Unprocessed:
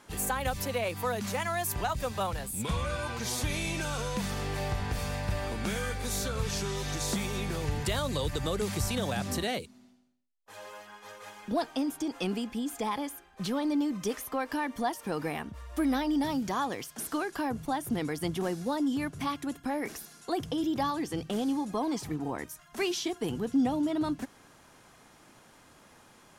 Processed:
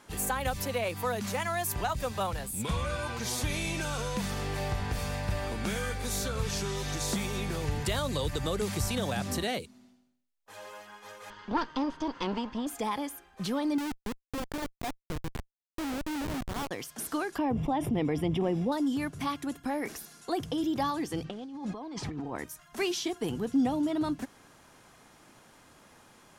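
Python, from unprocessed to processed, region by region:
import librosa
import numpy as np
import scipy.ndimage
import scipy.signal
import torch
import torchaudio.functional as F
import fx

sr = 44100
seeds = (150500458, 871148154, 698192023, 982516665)

y = fx.chain(x, sr, fx.lower_of_two(delay_ms=0.64),
    fx.lowpass(hz=5300.0, slope=24),
    fx.peak_eq(hz=930.0, db=15.0, octaves=0.33), at=(11.3, 12.67))
y = fx.chain(y, sr, fx.high_shelf(hz=3200.0, db=-10.5),
    fx.tremolo(hz=8.2, depth=0.34),
    fx.schmitt(flips_db=-31.5), at=(13.78, 16.71))
y = fx.chain(y, sr, fx.savgol(points=25),
    fx.peak_eq(hz=1500.0, db=-13.5, octaves=0.67),
    fx.env_flatten(amount_pct=70), at=(17.38, 18.72))
y = fx.chain(y, sr, fx.lowpass(hz=4600.0, slope=12),
    fx.over_compress(threshold_db=-38.0, ratio=-1.0), at=(21.24, 22.36))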